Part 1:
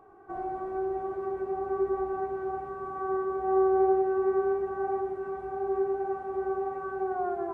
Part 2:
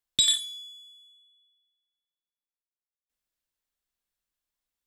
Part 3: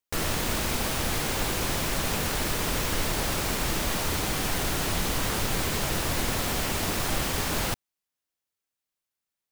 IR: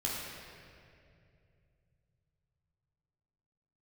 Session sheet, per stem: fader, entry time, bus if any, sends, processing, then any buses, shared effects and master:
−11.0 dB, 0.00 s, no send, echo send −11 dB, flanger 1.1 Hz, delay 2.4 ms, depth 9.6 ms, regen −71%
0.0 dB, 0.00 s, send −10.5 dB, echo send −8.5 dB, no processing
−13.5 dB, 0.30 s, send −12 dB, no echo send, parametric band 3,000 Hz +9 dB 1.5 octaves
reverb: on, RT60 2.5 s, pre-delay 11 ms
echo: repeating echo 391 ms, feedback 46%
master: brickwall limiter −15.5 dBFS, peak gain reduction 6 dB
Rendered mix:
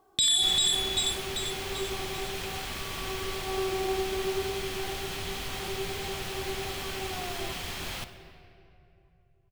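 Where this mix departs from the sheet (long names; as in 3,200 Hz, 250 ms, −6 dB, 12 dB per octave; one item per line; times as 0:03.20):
stem 1 −11.0 dB → −4.0 dB
stem 2 0.0 dB → +8.5 dB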